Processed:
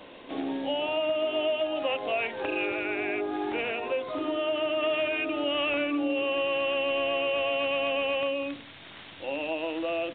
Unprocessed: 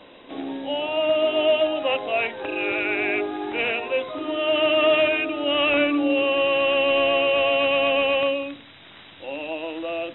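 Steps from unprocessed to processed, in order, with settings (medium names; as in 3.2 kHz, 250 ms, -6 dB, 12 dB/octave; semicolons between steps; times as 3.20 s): resampled via 8 kHz; compression 4:1, threshold -26 dBFS, peak gain reduction 9.5 dB; 2.65–4.83 s: dynamic bell 2.6 kHz, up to -4 dB, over -41 dBFS, Q 1.3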